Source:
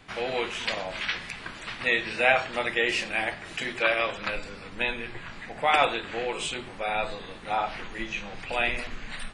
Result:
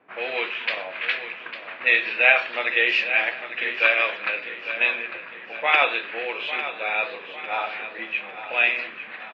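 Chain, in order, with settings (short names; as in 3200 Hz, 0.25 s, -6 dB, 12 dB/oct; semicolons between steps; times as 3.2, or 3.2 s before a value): on a send: echo 1.08 s -23 dB; on the sum: low-pass opened by the level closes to 800 Hz, open at -21 dBFS; speaker cabinet 420–4300 Hz, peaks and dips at 810 Hz -4 dB, 1700 Hz +3 dB, 2500 Hz +8 dB; feedback echo 0.851 s, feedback 46%, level -11 dB; gain +1.5 dB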